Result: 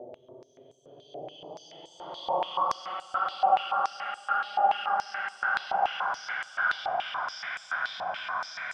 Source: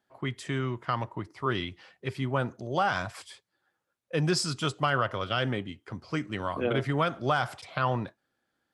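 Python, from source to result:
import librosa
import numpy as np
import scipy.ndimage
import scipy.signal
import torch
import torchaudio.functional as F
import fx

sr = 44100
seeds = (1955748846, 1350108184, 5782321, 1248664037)

p1 = fx.paulstretch(x, sr, seeds[0], factor=30.0, window_s=0.05, from_s=2.7)
p2 = p1 + fx.echo_swing(p1, sr, ms=915, ratio=1.5, feedback_pct=45, wet_db=-6.5, dry=0)
p3 = fx.filter_held_bandpass(p2, sr, hz=7.0, low_hz=750.0, high_hz=7600.0)
y = p3 * 10.0 ** (4.0 / 20.0)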